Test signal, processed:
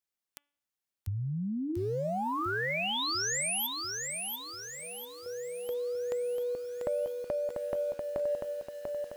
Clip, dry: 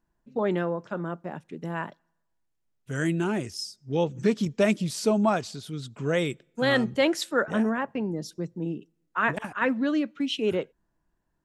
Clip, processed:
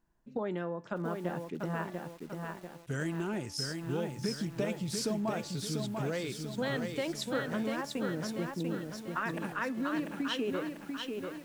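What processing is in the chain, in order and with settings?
de-hum 288 Hz, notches 12; compressor 6:1, threshold -32 dBFS; lo-fi delay 0.692 s, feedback 55%, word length 9-bit, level -4 dB

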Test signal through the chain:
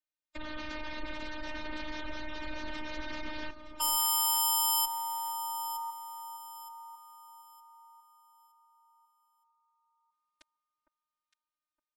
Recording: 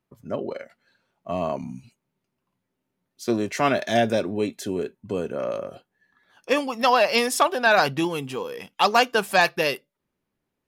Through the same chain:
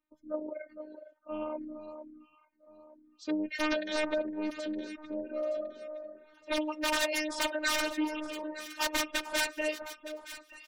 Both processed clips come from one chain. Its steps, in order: LPF 4700 Hz 12 dB/oct; notch 690 Hz, Q 12; wrapped overs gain 13 dB; low shelf 340 Hz -5 dB; comb 3.8 ms, depth 96%; limiter -11 dBFS; spectral gate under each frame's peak -20 dB strong; robotiser 307 Hz; on a send: echo with dull and thin repeats by turns 0.458 s, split 1300 Hz, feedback 55%, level -9 dB; on the sum: Doppler distortion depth 0.11 ms; gain -6 dB

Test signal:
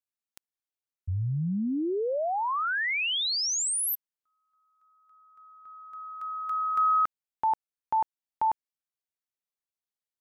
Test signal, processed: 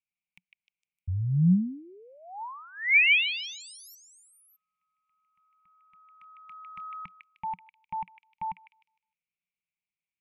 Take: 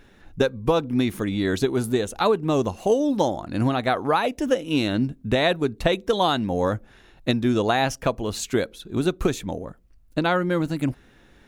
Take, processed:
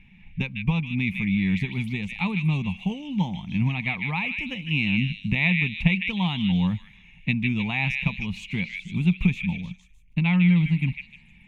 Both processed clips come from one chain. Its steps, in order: EQ curve 120 Hz 0 dB, 180 Hz +11 dB, 320 Hz -19 dB, 600 Hz -25 dB, 900 Hz -7 dB, 1500 Hz -23 dB, 2300 Hz +12 dB, 4300 Hz -17 dB, 14000 Hz -24 dB; delay with a stepping band-pass 0.153 s, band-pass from 2600 Hz, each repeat 0.7 oct, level -2 dB

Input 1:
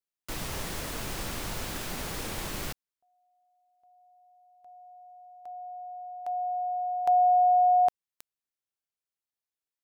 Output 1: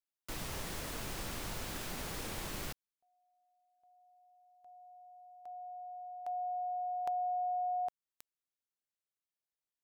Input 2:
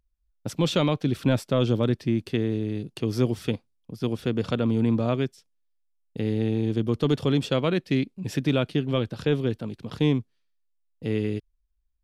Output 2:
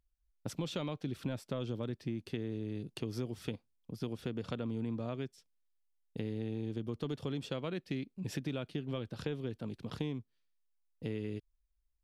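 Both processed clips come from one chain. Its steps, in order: compressor 5:1, threshold -29 dBFS; gain -5.5 dB

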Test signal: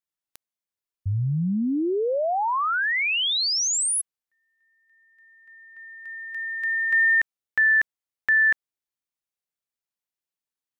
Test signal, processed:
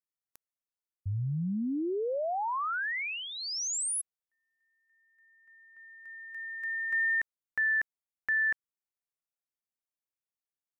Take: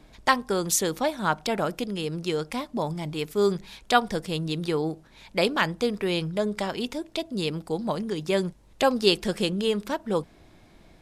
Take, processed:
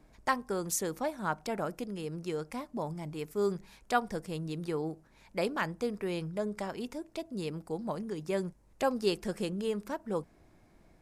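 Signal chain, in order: bell 3500 Hz -9.5 dB 0.85 oct; gain -7.5 dB

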